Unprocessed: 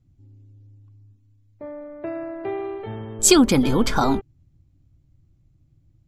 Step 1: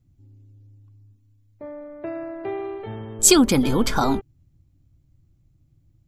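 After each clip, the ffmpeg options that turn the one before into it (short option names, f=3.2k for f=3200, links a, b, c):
-af "highshelf=f=8.5k:g=6.5,volume=-1dB"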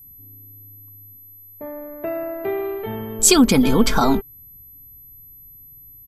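-filter_complex "[0:a]aecho=1:1:4.5:0.36,asplit=2[a][b];[b]alimiter=limit=-12.5dB:level=0:latency=1:release=248,volume=1dB[c];[a][c]amix=inputs=2:normalize=0,aeval=exprs='val(0)+0.01*sin(2*PI*12000*n/s)':c=same,volume=-2dB"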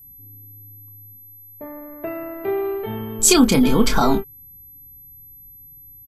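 -filter_complex "[0:a]asplit=2[a][b];[b]adelay=28,volume=-7.5dB[c];[a][c]amix=inputs=2:normalize=0,volume=-1dB"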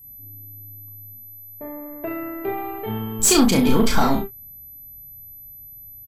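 -filter_complex "[0:a]aeval=exprs='(tanh(3.16*val(0)+0.3)-tanh(0.3))/3.16':c=same,asplit=2[a][b];[b]aecho=0:1:37|70:0.562|0.2[c];[a][c]amix=inputs=2:normalize=0"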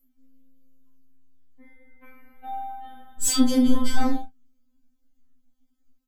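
-af "afftfilt=real='re*3.46*eq(mod(b,12),0)':imag='im*3.46*eq(mod(b,12),0)':win_size=2048:overlap=0.75,volume=-5.5dB"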